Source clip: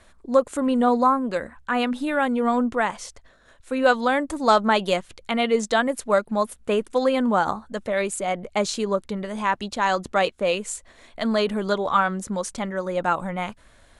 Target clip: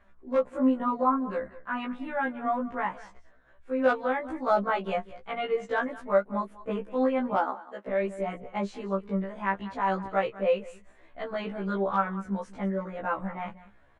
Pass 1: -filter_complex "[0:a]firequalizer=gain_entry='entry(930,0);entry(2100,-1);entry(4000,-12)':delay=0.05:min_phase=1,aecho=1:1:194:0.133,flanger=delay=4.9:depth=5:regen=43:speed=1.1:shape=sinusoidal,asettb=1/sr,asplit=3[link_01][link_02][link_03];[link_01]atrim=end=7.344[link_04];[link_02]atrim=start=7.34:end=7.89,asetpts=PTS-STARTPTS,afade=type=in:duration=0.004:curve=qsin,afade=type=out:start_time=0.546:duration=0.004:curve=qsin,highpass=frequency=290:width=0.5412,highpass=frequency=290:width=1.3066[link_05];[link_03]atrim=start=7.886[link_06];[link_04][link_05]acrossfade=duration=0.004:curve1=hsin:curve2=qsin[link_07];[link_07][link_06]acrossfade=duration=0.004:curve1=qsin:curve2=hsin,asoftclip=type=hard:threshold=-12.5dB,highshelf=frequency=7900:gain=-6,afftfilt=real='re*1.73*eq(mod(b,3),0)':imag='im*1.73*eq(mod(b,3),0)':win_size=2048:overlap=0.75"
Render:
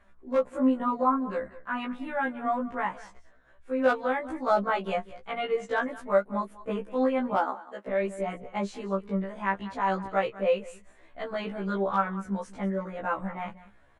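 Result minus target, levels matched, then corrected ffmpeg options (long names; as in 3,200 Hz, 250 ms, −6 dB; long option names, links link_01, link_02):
8,000 Hz band +5.5 dB
-filter_complex "[0:a]firequalizer=gain_entry='entry(930,0);entry(2100,-1);entry(4000,-12)':delay=0.05:min_phase=1,aecho=1:1:194:0.133,flanger=delay=4.9:depth=5:regen=43:speed=1.1:shape=sinusoidal,asettb=1/sr,asplit=3[link_01][link_02][link_03];[link_01]atrim=end=7.344[link_04];[link_02]atrim=start=7.34:end=7.89,asetpts=PTS-STARTPTS,afade=type=in:duration=0.004:curve=qsin,afade=type=out:start_time=0.546:duration=0.004:curve=qsin,highpass=frequency=290:width=0.5412,highpass=frequency=290:width=1.3066[link_05];[link_03]atrim=start=7.886[link_06];[link_04][link_05]acrossfade=duration=0.004:curve1=hsin:curve2=qsin[link_07];[link_07][link_06]acrossfade=duration=0.004:curve1=qsin:curve2=hsin,asoftclip=type=hard:threshold=-12.5dB,highshelf=frequency=7900:gain=-18,afftfilt=real='re*1.73*eq(mod(b,3),0)':imag='im*1.73*eq(mod(b,3),0)':win_size=2048:overlap=0.75"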